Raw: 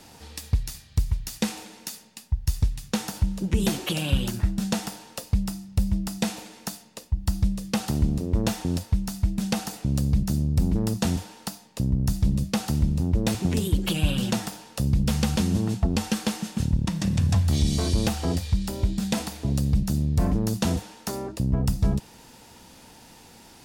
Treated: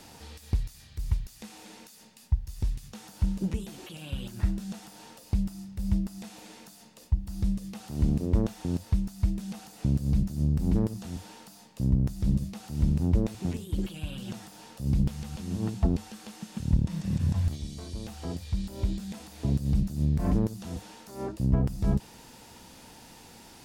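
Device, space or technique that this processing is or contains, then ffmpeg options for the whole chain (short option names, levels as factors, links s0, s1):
de-esser from a sidechain: -filter_complex "[0:a]asplit=2[s0][s1];[s1]highpass=4500,apad=whole_len=1042914[s2];[s0][s2]sidechaincompress=threshold=0.00251:ratio=8:attack=3.1:release=23"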